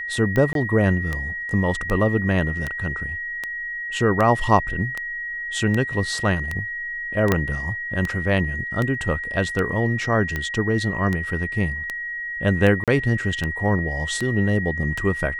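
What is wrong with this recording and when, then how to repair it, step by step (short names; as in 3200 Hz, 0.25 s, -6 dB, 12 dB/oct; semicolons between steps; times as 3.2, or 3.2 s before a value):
tick 78 rpm -12 dBFS
tone 1900 Hz -27 dBFS
0.53–0.55 gap 22 ms
7.32 pop -4 dBFS
12.84–12.88 gap 37 ms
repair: de-click; notch 1900 Hz, Q 30; interpolate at 0.53, 22 ms; interpolate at 12.84, 37 ms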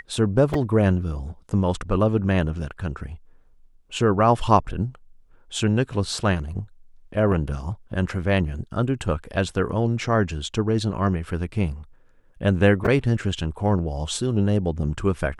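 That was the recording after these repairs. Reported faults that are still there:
7.32 pop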